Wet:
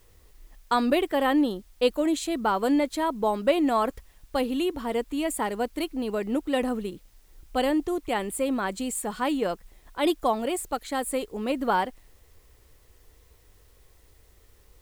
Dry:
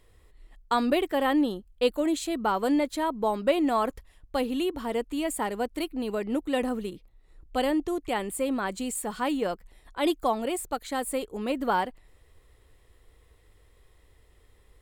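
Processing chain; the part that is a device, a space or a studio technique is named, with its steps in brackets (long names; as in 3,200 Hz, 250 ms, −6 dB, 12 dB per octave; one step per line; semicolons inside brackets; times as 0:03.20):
plain cassette with noise reduction switched in (one half of a high-frequency compander decoder only; tape wow and flutter 19 cents; white noise bed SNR 37 dB)
level +1.5 dB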